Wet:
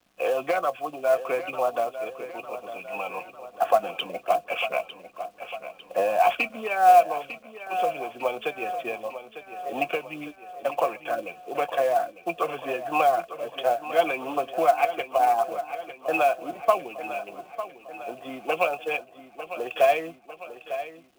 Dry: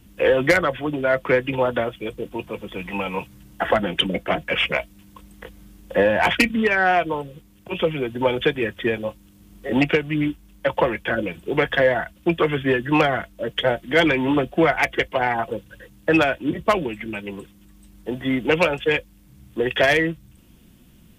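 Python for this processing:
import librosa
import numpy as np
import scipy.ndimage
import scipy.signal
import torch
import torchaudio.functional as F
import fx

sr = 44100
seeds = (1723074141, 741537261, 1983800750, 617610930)

y = fx.vowel_filter(x, sr, vowel='a')
y = fx.quant_companded(y, sr, bits=6)
y = fx.echo_feedback(y, sr, ms=901, feedback_pct=54, wet_db=-12.0)
y = y * librosa.db_to_amplitude(5.5)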